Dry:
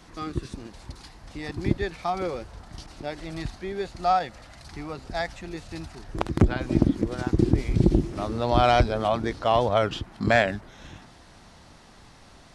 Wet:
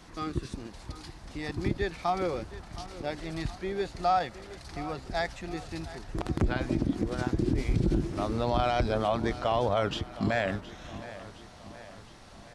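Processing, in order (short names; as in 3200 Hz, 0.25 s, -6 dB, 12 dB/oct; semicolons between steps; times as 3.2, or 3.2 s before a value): limiter -15.5 dBFS, peak gain reduction 9.5 dB; feedback echo 0.717 s, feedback 54%, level -16 dB; gain -1 dB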